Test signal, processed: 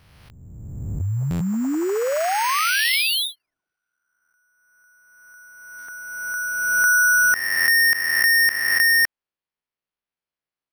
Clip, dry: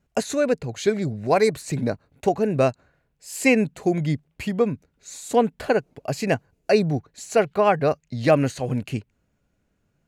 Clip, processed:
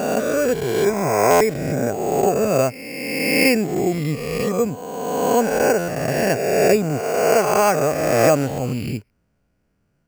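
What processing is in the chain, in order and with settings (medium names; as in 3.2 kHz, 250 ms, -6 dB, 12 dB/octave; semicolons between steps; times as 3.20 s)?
reverse spectral sustain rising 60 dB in 1.86 s; careless resampling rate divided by 6×, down filtered, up hold; buffer glitch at 1.30/5.78 s, samples 512, times 8; trim -1 dB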